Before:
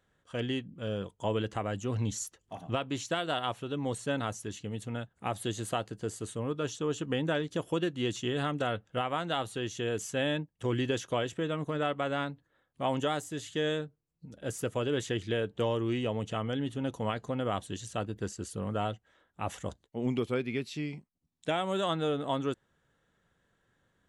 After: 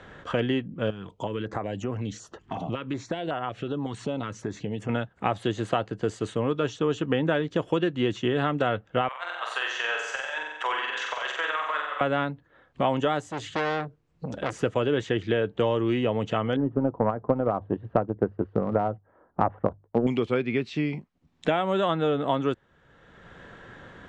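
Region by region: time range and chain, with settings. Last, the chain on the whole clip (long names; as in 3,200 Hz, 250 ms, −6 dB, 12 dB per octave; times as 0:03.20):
0:00.90–0:04.89: high-shelf EQ 7,800 Hz −5 dB + downward compressor 2.5 to 1, threshold −44 dBFS + notch on a step sequencer 5.4 Hz 540–3,900 Hz
0:09.08–0:12.01: high-pass filter 860 Hz 24 dB per octave + compressor whose output falls as the input rises −42 dBFS, ratio −0.5 + flutter between parallel walls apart 7.9 metres, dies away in 0.81 s
0:13.21–0:14.53: high-shelf EQ 6,200 Hz +8 dB + saturating transformer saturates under 3,000 Hz
0:16.56–0:20.07: low-pass filter 1,100 Hz 24 dB per octave + mains-hum notches 50/100/150 Hz + transient designer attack +10 dB, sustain −2 dB
whole clip: low-pass filter 7,400 Hz 24 dB per octave; bass and treble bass −3 dB, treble −13 dB; multiband upward and downward compressor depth 70%; level +7 dB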